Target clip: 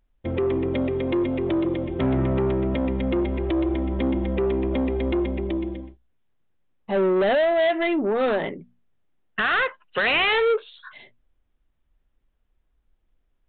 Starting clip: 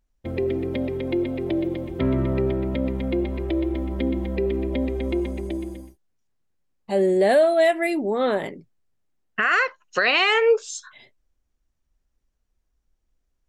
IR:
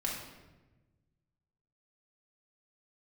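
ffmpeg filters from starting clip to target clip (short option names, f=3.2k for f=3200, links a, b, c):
-af "bandreject=f=60:t=h:w=6,bandreject=f=120:t=h:w=6,bandreject=f=180:t=h:w=6,bandreject=f=240:t=h:w=6,aresample=8000,asoftclip=type=tanh:threshold=-21.5dB,aresample=44100,volume=4dB"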